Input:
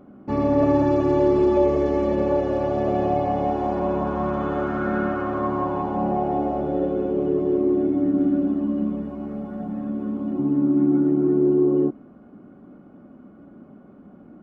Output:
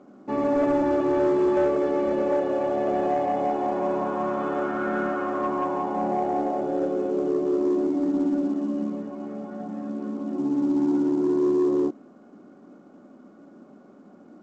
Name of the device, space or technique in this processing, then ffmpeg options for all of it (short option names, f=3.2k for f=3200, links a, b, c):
telephone: -af "highpass=260,lowpass=3.6k,asoftclip=type=tanh:threshold=-15dB" -ar 16000 -c:a pcm_mulaw